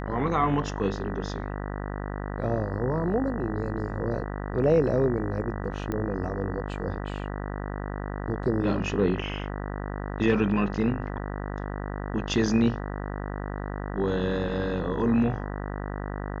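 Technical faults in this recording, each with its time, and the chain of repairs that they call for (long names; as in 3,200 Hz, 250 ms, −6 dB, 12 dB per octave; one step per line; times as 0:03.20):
mains buzz 50 Hz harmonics 39 −33 dBFS
0:05.92: click −18 dBFS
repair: click removal
hum removal 50 Hz, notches 39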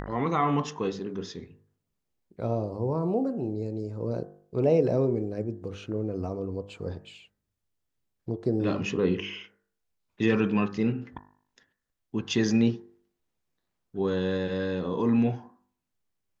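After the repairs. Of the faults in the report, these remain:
none of them is left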